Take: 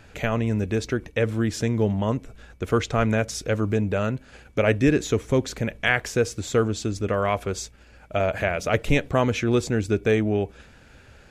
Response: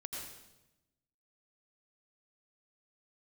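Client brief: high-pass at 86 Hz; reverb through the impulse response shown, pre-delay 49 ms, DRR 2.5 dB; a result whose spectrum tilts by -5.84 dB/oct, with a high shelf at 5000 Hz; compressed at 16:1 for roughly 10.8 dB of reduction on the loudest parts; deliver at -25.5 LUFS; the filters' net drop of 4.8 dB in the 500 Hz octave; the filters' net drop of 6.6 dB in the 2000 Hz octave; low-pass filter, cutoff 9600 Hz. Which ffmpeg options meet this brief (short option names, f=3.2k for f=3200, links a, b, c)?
-filter_complex "[0:a]highpass=86,lowpass=9.6k,equalizer=f=500:t=o:g=-5.5,equalizer=f=2k:t=o:g=-7.5,highshelf=f=5k:g=-5,acompressor=threshold=-28dB:ratio=16,asplit=2[a][b];[1:a]atrim=start_sample=2205,adelay=49[c];[b][c]afir=irnorm=-1:irlink=0,volume=-1.5dB[d];[a][d]amix=inputs=2:normalize=0,volume=7dB"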